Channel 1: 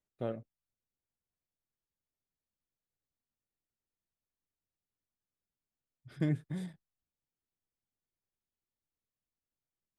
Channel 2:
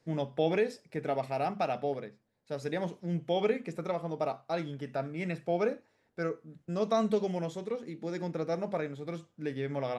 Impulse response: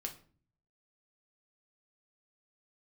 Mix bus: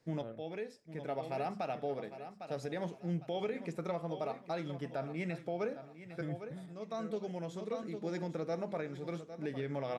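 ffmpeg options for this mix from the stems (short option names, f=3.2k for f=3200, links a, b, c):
-filter_complex "[0:a]volume=-8.5dB,asplit=2[a][b];[1:a]volume=-2dB,asplit=2[c][d];[d]volume=-14.5dB[e];[b]apad=whole_len=440339[f];[c][f]sidechaincompress=threshold=-51dB:ratio=16:attack=16:release=1310[g];[e]aecho=0:1:804|1608|2412|3216|4020:1|0.32|0.102|0.0328|0.0105[h];[a][g][h]amix=inputs=3:normalize=0,alimiter=level_in=3.5dB:limit=-24dB:level=0:latency=1:release=128,volume=-3.5dB"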